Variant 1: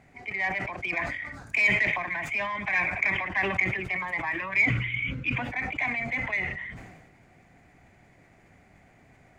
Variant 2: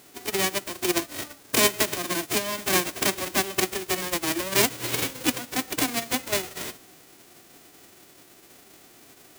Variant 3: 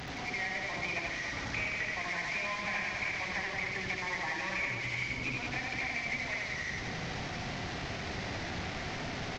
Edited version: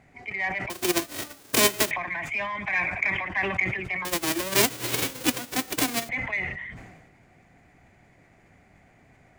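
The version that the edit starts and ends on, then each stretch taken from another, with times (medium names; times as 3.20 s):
1
0.70–1.91 s: from 2
4.05–6.09 s: from 2
not used: 3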